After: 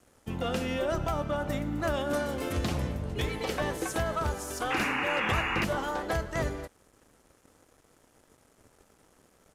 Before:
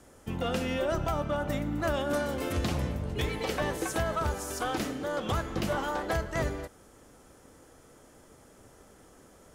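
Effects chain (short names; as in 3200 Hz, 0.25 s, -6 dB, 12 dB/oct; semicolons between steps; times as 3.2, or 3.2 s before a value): crossover distortion -57 dBFS; downsampling 32000 Hz; painted sound noise, 4.7–5.65, 730–2900 Hz -31 dBFS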